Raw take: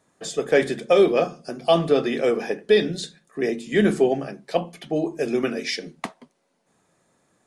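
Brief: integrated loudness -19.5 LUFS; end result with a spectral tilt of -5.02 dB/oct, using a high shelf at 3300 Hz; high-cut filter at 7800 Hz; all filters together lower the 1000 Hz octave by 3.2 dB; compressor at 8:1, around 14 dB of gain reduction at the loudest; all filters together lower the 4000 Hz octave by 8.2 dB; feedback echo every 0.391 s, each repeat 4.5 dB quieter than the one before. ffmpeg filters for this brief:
-af "lowpass=7.8k,equalizer=f=1k:t=o:g=-4.5,highshelf=f=3.3k:g=-5.5,equalizer=f=4k:t=o:g=-6.5,acompressor=threshold=-28dB:ratio=8,aecho=1:1:391|782|1173|1564|1955|2346|2737|3128|3519:0.596|0.357|0.214|0.129|0.0772|0.0463|0.0278|0.0167|0.01,volume=13dB"

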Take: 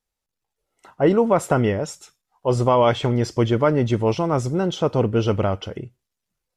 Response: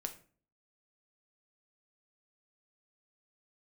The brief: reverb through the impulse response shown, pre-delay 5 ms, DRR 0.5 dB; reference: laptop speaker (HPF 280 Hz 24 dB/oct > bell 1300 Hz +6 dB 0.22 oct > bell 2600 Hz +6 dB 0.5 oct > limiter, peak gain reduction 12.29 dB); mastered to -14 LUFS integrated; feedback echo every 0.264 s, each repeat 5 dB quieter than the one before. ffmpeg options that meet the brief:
-filter_complex "[0:a]aecho=1:1:264|528|792|1056|1320|1584|1848:0.562|0.315|0.176|0.0988|0.0553|0.031|0.0173,asplit=2[a][b];[1:a]atrim=start_sample=2205,adelay=5[c];[b][c]afir=irnorm=-1:irlink=0,volume=1dB[d];[a][d]amix=inputs=2:normalize=0,highpass=f=280:w=0.5412,highpass=f=280:w=1.3066,equalizer=f=1.3k:t=o:w=0.22:g=6,equalizer=f=2.6k:t=o:w=0.5:g=6,volume=8dB,alimiter=limit=-4.5dB:level=0:latency=1"

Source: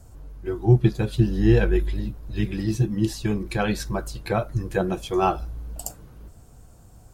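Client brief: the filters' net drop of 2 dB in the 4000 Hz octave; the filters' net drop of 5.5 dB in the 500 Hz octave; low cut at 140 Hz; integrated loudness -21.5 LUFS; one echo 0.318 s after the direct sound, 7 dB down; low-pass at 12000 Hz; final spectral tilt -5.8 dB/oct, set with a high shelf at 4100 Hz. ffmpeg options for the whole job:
-af "highpass=140,lowpass=12k,equalizer=f=500:t=o:g=-8.5,equalizer=f=4k:t=o:g=-7,highshelf=f=4.1k:g=7.5,aecho=1:1:318:0.447,volume=6dB"

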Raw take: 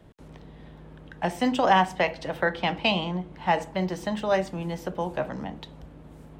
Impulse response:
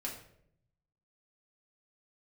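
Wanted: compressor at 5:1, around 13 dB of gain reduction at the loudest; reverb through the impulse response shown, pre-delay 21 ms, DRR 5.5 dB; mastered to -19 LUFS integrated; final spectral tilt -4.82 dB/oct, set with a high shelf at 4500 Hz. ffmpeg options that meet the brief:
-filter_complex "[0:a]highshelf=f=4.5k:g=8.5,acompressor=threshold=-29dB:ratio=5,asplit=2[a][b];[1:a]atrim=start_sample=2205,adelay=21[c];[b][c]afir=irnorm=-1:irlink=0,volume=-6dB[d];[a][d]amix=inputs=2:normalize=0,volume=14dB"

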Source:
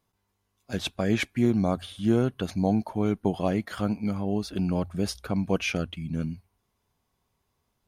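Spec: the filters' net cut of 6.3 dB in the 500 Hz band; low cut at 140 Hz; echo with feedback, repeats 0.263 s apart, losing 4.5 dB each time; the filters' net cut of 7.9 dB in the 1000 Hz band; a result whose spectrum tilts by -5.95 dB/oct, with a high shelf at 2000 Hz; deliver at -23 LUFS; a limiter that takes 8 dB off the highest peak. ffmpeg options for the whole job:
-af "highpass=140,equalizer=f=500:t=o:g=-6.5,equalizer=f=1k:t=o:g=-7,highshelf=f=2k:g=-6.5,alimiter=limit=-23dB:level=0:latency=1,aecho=1:1:263|526|789|1052|1315|1578|1841|2104|2367:0.596|0.357|0.214|0.129|0.0772|0.0463|0.0278|0.0167|0.01,volume=10dB"

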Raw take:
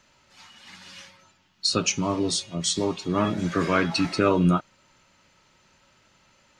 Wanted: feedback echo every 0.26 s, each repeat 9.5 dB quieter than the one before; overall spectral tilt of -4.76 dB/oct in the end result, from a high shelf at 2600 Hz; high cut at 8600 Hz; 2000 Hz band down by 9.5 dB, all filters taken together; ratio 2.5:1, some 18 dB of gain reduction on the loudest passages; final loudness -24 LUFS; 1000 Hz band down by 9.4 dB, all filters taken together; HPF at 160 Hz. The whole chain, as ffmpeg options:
-af "highpass=160,lowpass=8.6k,equalizer=f=1k:t=o:g=-8.5,equalizer=f=2k:t=o:g=-6,highshelf=f=2.6k:g=-8.5,acompressor=threshold=-47dB:ratio=2.5,aecho=1:1:260|520|780|1040:0.335|0.111|0.0365|0.012,volume=19.5dB"

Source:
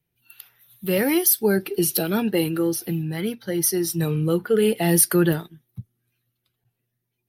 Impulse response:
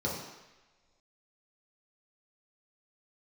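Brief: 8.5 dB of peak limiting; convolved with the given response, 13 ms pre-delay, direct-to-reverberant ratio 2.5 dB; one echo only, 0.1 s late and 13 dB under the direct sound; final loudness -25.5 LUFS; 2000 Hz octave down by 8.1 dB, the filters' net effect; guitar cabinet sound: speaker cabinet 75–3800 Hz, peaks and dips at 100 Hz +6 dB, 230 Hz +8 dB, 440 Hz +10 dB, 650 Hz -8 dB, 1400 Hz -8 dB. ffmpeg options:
-filter_complex "[0:a]equalizer=f=2k:t=o:g=-7.5,alimiter=limit=-12.5dB:level=0:latency=1,aecho=1:1:100:0.224,asplit=2[a][b];[1:a]atrim=start_sample=2205,adelay=13[c];[b][c]afir=irnorm=-1:irlink=0,volume=-9.5dB[d];[a][d]amix=inputs=2:normalize=0,highpass=75,equalizer=f=100:t=q:w=4:g=6,equalizer=f=230:t=q:w=4:g=8,equalizer=f=440:t=q:w=4:g=10,equalizer=f=650:t=q:w=4:g=-8,equalizer=f=1.4k:t=q:w=4:g=-8,lowpass=f=3.8k:w=0.5412,lowpass=f=3.8k:w=1.3066,volume=-11.5dB"

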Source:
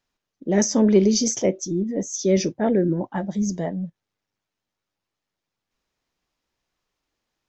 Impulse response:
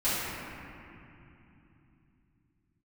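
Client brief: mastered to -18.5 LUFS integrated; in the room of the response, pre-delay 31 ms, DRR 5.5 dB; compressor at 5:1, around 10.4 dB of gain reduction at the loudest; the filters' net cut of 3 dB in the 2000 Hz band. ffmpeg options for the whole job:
-filter_complex "[0:a]equalizer=f=2k:t=o:g=-3.5,acompressor=threshold=-23dB:ratio=5,asplit=2[a][b];[1:a]atrim=start_sample=2205,adelay=31[c];[b][c]afir=irnorm=-1:irlink=0,volume=-17.5dB[d];[a][d]amix=inputs=2:normalize=0,volume=8.5dB"

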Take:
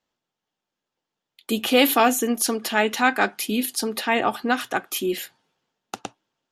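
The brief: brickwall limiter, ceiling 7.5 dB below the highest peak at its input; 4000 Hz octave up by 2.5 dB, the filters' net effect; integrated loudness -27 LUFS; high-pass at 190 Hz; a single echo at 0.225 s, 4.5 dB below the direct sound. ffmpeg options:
-af "highpass=190,equalizer=f=4k:t=o:g=3.5,alimiter=limit=-11dB:level=0:latency=1,aecho=1:1:225:0.596,volume=-4.5dB"

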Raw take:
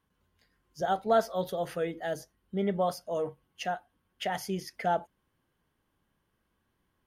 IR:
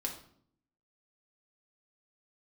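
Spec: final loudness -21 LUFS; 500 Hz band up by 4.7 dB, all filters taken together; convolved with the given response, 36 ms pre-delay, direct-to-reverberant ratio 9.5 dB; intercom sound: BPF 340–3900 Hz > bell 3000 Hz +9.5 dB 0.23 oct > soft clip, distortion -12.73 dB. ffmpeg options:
-filter_complex "[0:a]equalizer=f=500:t=o:g=7,asplit=2[a][b];[1:a]atrim=start_sample=2205,adelay=36[c];[b][c]afir=irnorm=-1:irlink=0,volume=-11dB[d];[a][d]amix=inputs=2:normalize=0,highpass=340,lowpass=3.9k,equalizer=f=3k:t=o:w=0.23:g=9.5,asoftclip=threshold=-20.5dB,volume=10dB"

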